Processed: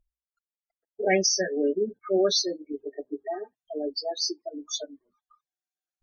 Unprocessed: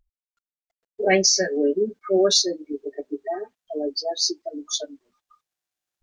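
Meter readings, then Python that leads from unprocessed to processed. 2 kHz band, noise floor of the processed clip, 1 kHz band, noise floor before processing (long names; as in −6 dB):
−4.5 dB, below −85 dBFS, −4.0 dB, below −85 dBFS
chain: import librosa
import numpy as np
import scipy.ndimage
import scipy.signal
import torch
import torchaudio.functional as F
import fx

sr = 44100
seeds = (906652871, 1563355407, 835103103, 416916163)

y = fx.spec_topn(x, sr, count=32)
y = fx.hum_notches(y, sr, base_hz=60, count=2)
y = y * librosa.db_to_amplitude(-4.0)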